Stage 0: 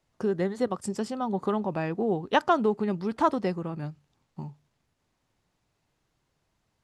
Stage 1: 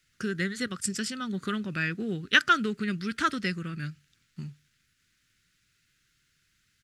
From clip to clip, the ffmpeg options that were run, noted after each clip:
-af "firequalizer=gain_entry='entry(170,0);entry(860,-25);entry(1400,10)':delay=0.05:min_phase=1"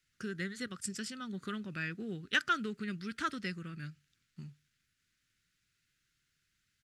-af "asoftclip=type=tanh:threshold=0.447,volume=0.376"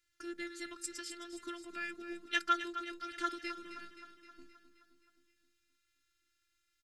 -filter_complex "[0:a]afftfilt=real='hypot(re,im)*cos(PI*b)':imag='0':win_size=512:overlap=0.75,asplit=2[s0][s1];[s1]aecho=0:1:262|524|786|1048|1310|1572|1834:0.282|0.166|0.0981|0.0579|0.0342|0.0201|0.0119[s2];[s0][s2]amix=inputs=2:normalize=0,volume=1.19"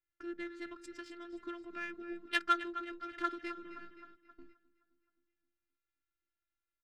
-af "adynamicsmooth=sensitivity=2.5:basefreq=2000,agate=range=0.316:threshold=0.00112:ratio=16:detection=peak,volume=1.19"

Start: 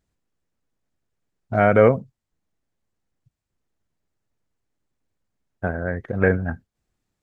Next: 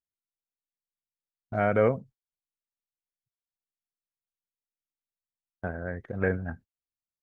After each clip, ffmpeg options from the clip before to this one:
-af "agate=range=0.0794:threshold=0.0112:ratio=16:detection=peak,volume=0.376"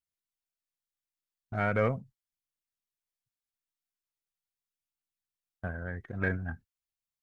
-af "equalizer=f=500:t=o:w=1.5:g=-8,aeval=exprs='0.188*(cos(1*acos(clip(val(0)/0.188,-1,1)))-cos(1*PI/2))+0.00376*(cos(6*acos(clip(val(0)/0.188,-1,1)))-cos(6*PI/2))':c=same,aphaser=in_gain=1:out_gain=1:delay=3.2:decay=0.25:speed=0.4:type=triangular"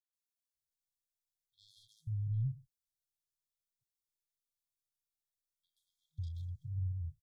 -filter_complex "[0:a]acrossover=split=760|3200[s0][s1][s2];[s2]adelay=130[s3];[s0]adelay=550[s4];[s4][s1][s3]amix=inputs=3:normalize=0,aeval=exprs='0.126*(cos(1*acos(clip(val(0)/0.126,-1,1)))-cos(1*PI/2))+0.00178*(cos(7*acos(clip(val(0)/0.126,-1,1)))-cos(7*PI/2))':c=same,afftfilt=real='re*(1-between(b*sr/4096,160,3200))':imag='im*(1-between(b*sr/4096,160,3200))':win_size=4096:overlap=0.75"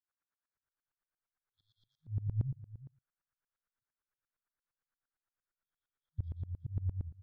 -af "lowpass=f=1500:t=q:w=3.1,aecho=1:1:365:0.141,aeval=exprs='val(0)*pow(10,-24*if(lt(mod(-8.7*n/s,1),2*abs(-8.7)/1000),1-mod(-8.7*n/s,1)/(2*abs(-8.7)/1000),(mod(-8.7*n/s,1)-2*abs(-8.7)/1000)/(1-2*abs(-8.7)/1000))/20)':c=same,volume=2.51"

